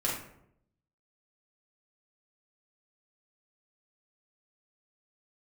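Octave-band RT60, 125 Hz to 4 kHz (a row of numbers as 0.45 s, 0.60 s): 0.95 s, 0.90 s, 0.80 s, 0.65 s, 0.55 s, 0.40 s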